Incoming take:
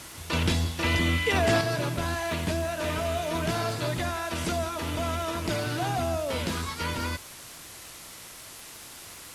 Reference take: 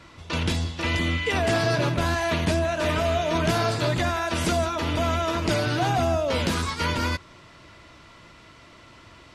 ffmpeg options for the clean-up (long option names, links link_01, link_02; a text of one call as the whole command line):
ffmpeg -i in.wav -af "adeclick=threshold=4,afwtdn=0.0071,asetnsamples=nb_out_samples=441:pad=0,asendcmd='1.61 volume volume 5.5dB',volume=0dB" out.wav